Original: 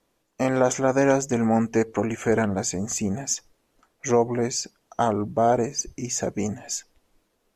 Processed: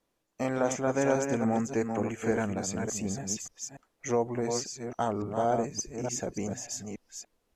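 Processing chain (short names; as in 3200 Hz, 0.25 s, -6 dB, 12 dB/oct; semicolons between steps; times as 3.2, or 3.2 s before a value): reverse delay 0.29 s, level -5.5 dB; gain -7.5 dB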